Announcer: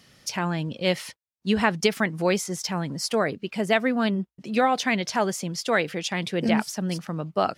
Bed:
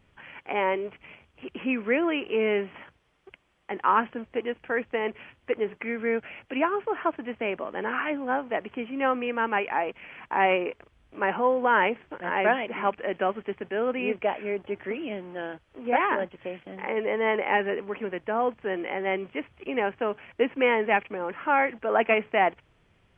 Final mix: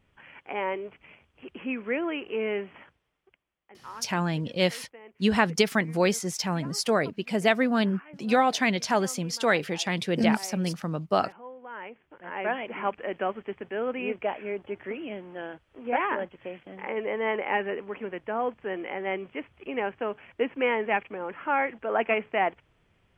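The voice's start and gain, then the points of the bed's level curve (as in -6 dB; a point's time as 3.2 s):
3.75 s, -0.5 dB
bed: 2.82 s -4.5 dB
3.71 s -20.5 dB
11.67 s -20.5 dB
12.67 s -3 dB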